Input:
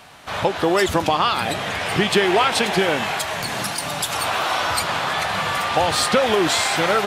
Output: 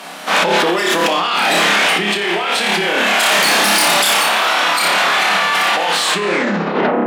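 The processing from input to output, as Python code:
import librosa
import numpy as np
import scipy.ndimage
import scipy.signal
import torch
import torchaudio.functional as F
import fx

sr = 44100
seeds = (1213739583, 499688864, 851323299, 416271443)

y = fx.tape_stop_end(x, sr, length_s=1.1)
y = fx.high_shelf(y, sr, hz=9700.0, db=3.5)
y = fx.room_flutter(y, sr, wall_m=5.0, rt60_s=0.58)
y = fx.dynamic_eq(y, sr, hz=2400.0, q=0.75, threshold_db=-31.0, ratio=4.0, max_db=7)
y = fx.over_compress(y, sr, threshold_db=-20.0, ratio=-1.0)
y = fx.cheby_harmonics(y, sr, harmonics=(3, 5), levels_db=(-8, -8), full_scale_db=-2.5)
y = scipy.signal.sosfilt(scipy.signal.ellip(4, 1.0, 40, 180.0, 'highpass', fs=sr, output='sos'), y)
y = y * 10.0 ** (2.5 / 20.0)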